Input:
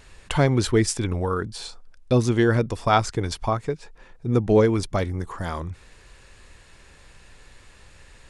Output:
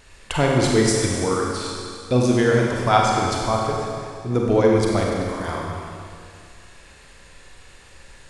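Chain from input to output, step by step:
bass and treble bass −3 dB, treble +1 dB
four-comb reverb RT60 2.3 s, combs from 32 ms, DRR −2 dB

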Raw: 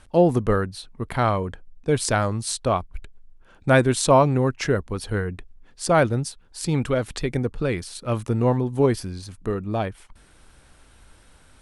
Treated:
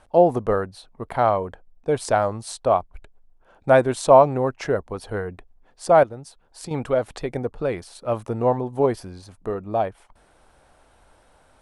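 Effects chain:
parametric band 700 Hz +13.5 dB 1.6 octaves
0:06.03–0:06.71: downward compressor 6 to 1, threshold −25 dBFS, peak gain reduction 11.5 dB
level −7.5 dB

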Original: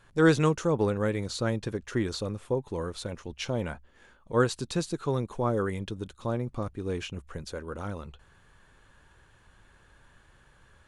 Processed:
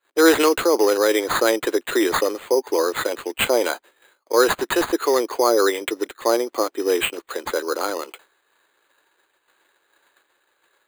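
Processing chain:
downward expander −46 dBFS
Butterworth high-pass 310 Hz 48 dB per octave
high shelf with overshoot 6,200 Hz −12.5 dB, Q 1.5
in parallel at 0 dB: compressor whose output falls as the input rises −31 dBFS, ratio −1
on the sum: decimation without filtering 8×
level +7 dB

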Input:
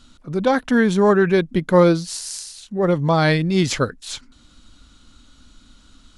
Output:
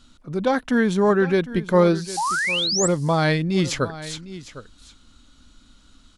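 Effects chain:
single-tap delay 756 ms −15.5 dB
sound drawn into the spectrogram rise, 0:02.17–0:02.88, 770–8,200 Hz −20 dBFS
level −3 dB

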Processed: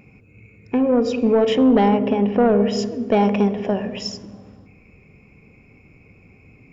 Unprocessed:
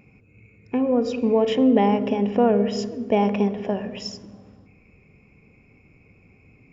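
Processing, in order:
soft clipping −12 dBFS, distortion −18 dB
0:01.89–0:02.62: Gaussian smoothing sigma 1.8 samples
level +4.5 dB

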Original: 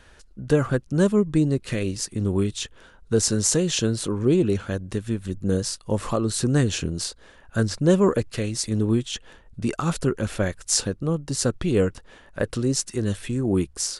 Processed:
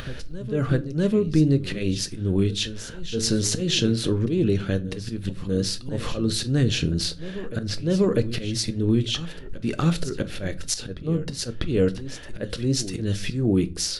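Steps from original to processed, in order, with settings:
octave-band graphic EQ 1,000/4,000/8,000 Hz −10/+4/−12 dB
in parallel at +2.5 dB: brickwall limiter −15.5 dBFS, peak gain reduction 7.5 dB
on the sum: upward compression, threshold −29 dBFS
volume swells 178 ms
downward compressor 1.5 to 1, threshold −25 dBFS, peak gain reduction 5.5 dB
on a send: backwards echo 647 ms −14 dB
on the sum: rectangular room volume 180 cubic metres, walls furnished, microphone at 0.46 metres

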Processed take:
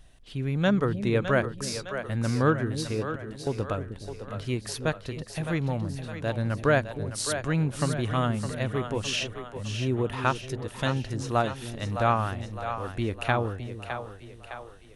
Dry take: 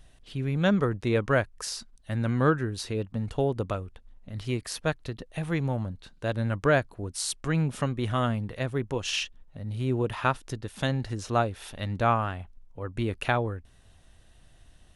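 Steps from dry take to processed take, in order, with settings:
0:02.93–0:03.47: volume swells 698 ms
echo with a time of its own for lows and highs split 400 Hz, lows 310 ms, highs 610 ms, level −8.5 dB

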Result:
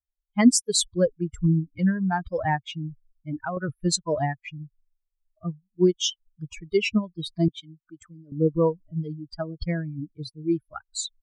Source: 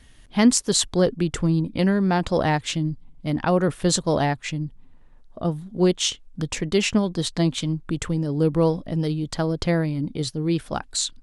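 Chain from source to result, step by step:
spectral dynamics exaggerated over time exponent 3
0:02.72–0:03.57: downward compressor 4 to 1, threshold −31 dBFS, peak gain reduction 7.5 dB
0:07.48–0:08.32: high-pass filter 970 Hz 6 dB per octave
level +3 dB

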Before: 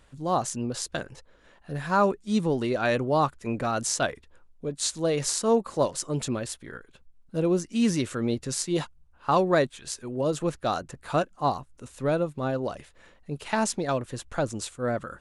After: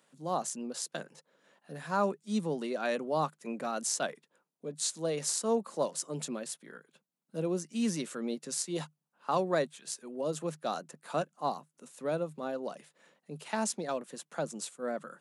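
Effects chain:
Chebyshev high-pass with heavy ripple 150 Hz, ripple 3 dB
high-shelf EQ 5,800 Hz +9 dB
level −6.5 dB

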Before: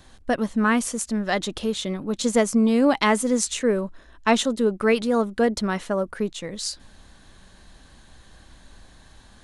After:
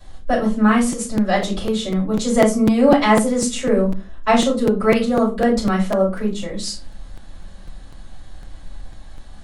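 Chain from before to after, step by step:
rectangular room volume 140 cubic metres, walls furnished, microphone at 5.5 metres
regular buffer underruns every 0.25 s, samples 256, repeat, from 0:00.92
level −8 dB

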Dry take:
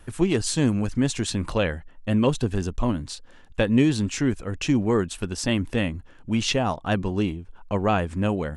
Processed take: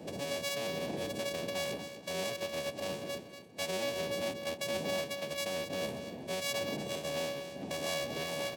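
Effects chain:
samples sorted by size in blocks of 64 samples
wind on the microphone 210 Hz −23 dBFS
high-pass filter 91 Hz 12 dB per octave
parametric band 1,400 Hz −12 dB 0.8 octaves
notch filter 1,700 Hz, Q 8.6
hum removal 137.4 Hz, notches 3
downward compressor 3 to 1, threshold −23 dBFS, peak gain reduction 9.5 dB
brickwall limiter −19.5 dBFS, peak gain reduction 9.5 dB
phase-vocoder pitch shift with formants kept −3.5 semitones
meter weighting curve A
on a send: repeating echo 238 ms, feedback 28%, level −10 dB
on the sum: level −1.5 dB

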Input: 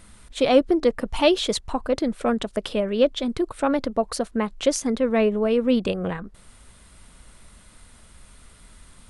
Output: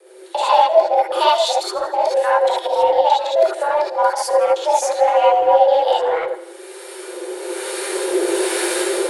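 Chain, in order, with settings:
reversed piece by piece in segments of 86 ms
camcorder AGC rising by 11 dB per second
high-pass filter 56 Hz 12 dB per octave
low-shelf EQ 390 Hz +7.5 dB
frequency shifter +310 Hz
in parallel at −12 dB: hard clipping −21.5 dBFS, distortion −5 dB
on the sum: two-band tremolo in antiphase 1.1 Hz, depth 50%, crossover 750 Hz
feedback echo with a high-pass in the loop 82 ms, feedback 64%, level −16 dB
reverb whose tail is shaped and stops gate 90 ms rising, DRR −5 dB
level −3.5 dB

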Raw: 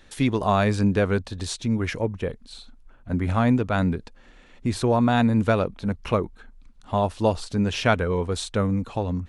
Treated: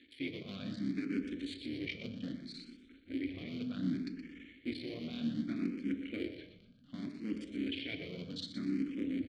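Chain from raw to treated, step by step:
sub-harmonics by changed cycles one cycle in 3, muted
parametric band 4,400 Hz +10 dB 0.24 octaves
mains-hum notches 60/120 Hz
reversed playback
downward compressor 6 to 1, threshold −35 dBFS, peak gain reduction 18.5 dB
reversed playback
formant filter i
repeating echo 121 ms, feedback 36%, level −9 dB
on a send at −7 dB: convolution reverb RT60 0.90 s, pre-delay 6 ms
on the sum: frequency shifter mixed with the dry sound +0.65 Hz
level +14.5 dB

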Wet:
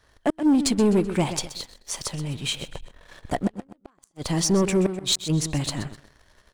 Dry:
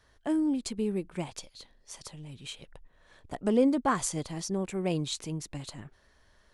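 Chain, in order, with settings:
gate with flip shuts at −20 dBFS, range −40 dB
repeating echo 127 ms, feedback 34%, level −13.5 dB
leveller curve on the samples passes 2
level +6.5 dB

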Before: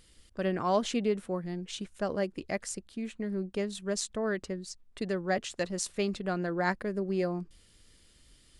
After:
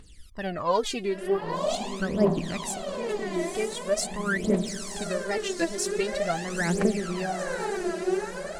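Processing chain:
tape wow and flutter 130 cents
feedback delay with all-pass diffusion 918 ms, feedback 61%, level −4.5 dB
phase shifter 0.44 Hz, delay 3.1 ms, feedback 79%

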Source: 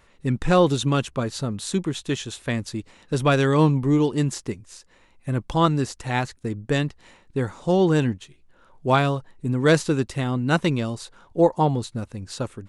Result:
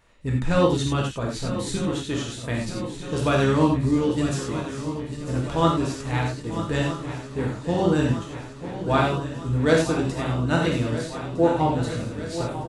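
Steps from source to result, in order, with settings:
feedback echo with a long and a short gap by turns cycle 1,258 ms, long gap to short 3 to 1, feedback 67%, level −12 dB
pitch-shifted copies added −12 semitones −14 dB
reverb whose tail is shaped and stops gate 120 ms flat, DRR −1.5 dB
level −5.5 dB

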